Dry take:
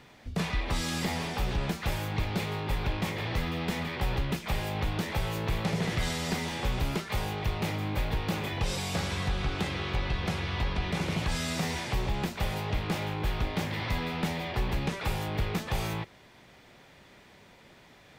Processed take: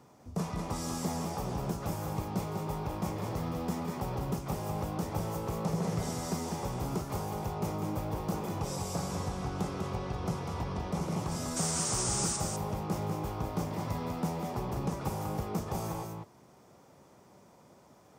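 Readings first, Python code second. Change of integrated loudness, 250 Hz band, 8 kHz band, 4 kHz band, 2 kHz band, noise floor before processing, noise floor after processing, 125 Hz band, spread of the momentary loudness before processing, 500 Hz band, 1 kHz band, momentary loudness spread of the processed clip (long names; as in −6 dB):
−3.0 dB, −1.0 dB, +5.5 dB, −8.5 dB, −13.0 dB, −56 dBFS, −59 dBFS, −3.0 dB, 2 LU, −1.0 dB, −1.0 dB, 5 LU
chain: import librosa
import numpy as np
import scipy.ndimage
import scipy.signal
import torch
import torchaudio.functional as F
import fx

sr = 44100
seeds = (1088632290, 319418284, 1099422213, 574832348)

y = fx.spec_paint(x, sr, seeds[0], shape='noise', start_s=11.56, length_s=0.81, low_hz=1100.0, high_hz=9400.0, level_db=-30.0)
y = scipy.signal.sosfilt(scipy.signal.butter(2, 91.0, 'highpass', fs=sr, output='sos'), y)
y = fx.band_shelf(y, sr, hz=2600.0, db=-14.0, octaves=1.7)
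y = y + 10.0 ** (-5.0 / 20.0) * np.pad(y, (int(197 * sr / 1000.0), 0))[:len(y)]
y = y * 10.0 ** (-2.0 / 20.0)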